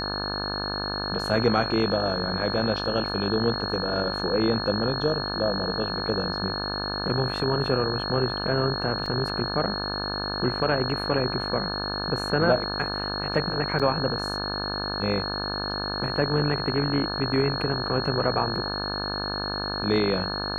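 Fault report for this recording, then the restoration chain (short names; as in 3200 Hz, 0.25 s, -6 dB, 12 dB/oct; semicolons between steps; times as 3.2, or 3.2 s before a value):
buzz 50 Hz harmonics 35 -32 dBFS
tone 4300 Hz -31 dBFS
9.06 gap 4.5 ms
13.79–13.8 gap 6.1 ms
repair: de-hum 50 Hz, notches 35; notch 4300 Hz, Q 30; interpolate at 9.06, 4.5 ms; interpolate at 13.79, 6.1 ms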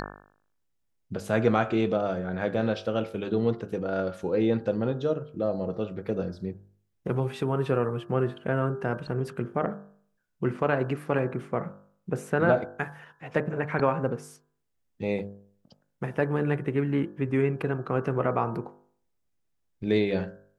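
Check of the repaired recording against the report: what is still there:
none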